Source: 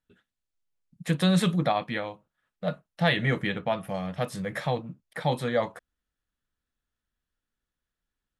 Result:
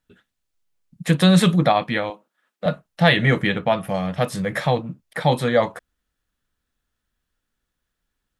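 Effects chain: 2.10–2.66 s: high-pass 230 Hz 24 dB/octave; trim +8 dB

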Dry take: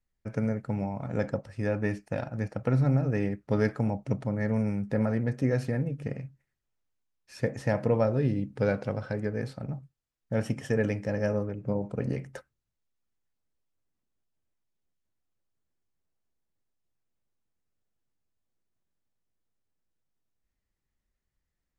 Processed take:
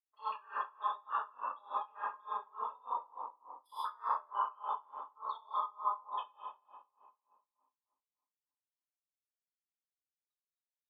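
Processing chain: treble shelf 5.2 kHz +4.5 dB; filtered feedback delay 318 ms, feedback 55%, low-pass 1.9 kHz, level -13.5 dB; spectral gate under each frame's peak -15 dB strong; level held to a coarse grid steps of 17 dB; high-pass 600 Hz 24 dB/octave; speed mistake 7.5 ips tape played at 15 ips; low-pass that closes with the level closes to 910 Hz, closed at -45 dBFS; reverberation RT60 2.2 s, pre-delay 4 ms, DRR -11.5 dB; logarithmic tremolo 3.4 Hz, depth 28 dB; trim +5 dB

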